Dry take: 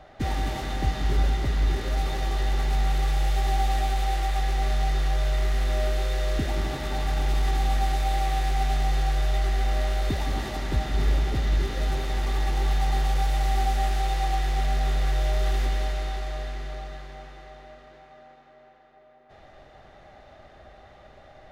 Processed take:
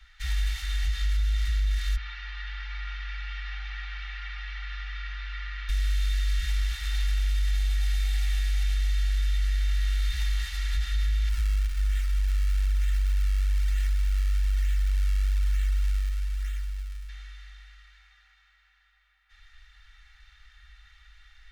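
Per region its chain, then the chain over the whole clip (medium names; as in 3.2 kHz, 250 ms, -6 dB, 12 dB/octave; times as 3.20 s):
1.96–5.69 s: one-bit delta coder 32 kbps, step -38.5 dBFS + band-pass 130–2100 Hz + comb 5.7 ms, depth 86%
11.29–17.09 s: peaking EQ 650 Hz -14 dB 1.3 oct + decimation with a swept rate 41×, swing 160% 1.1 Hz + loudspeaker Doppler distortion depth 0.37 ms
whole clip: inverse Chebyshev band-stop 200–450 Hz, stop band 80 dB; comb 2.2 ms, depth 59%; peak limiter -19.5 dBFS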